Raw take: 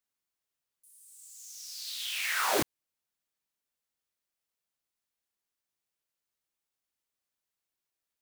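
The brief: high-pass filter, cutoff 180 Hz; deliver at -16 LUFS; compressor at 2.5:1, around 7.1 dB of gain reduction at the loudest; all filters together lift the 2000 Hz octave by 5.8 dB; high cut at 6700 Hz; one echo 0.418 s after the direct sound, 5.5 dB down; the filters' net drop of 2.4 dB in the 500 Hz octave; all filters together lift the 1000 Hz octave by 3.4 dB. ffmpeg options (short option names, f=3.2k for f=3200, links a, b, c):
-af "highpass=180,lowpass=6.7k,equalizer=f=500:t=o:g=-4.5,equalizer=f=1k:t=o:g=3.5,equalizer=f=2k:t=o:g=6.5,acompressor=threshold=-33dB:ratio=2.5,aecho=1:1:418:0.531,volume=18.5dB"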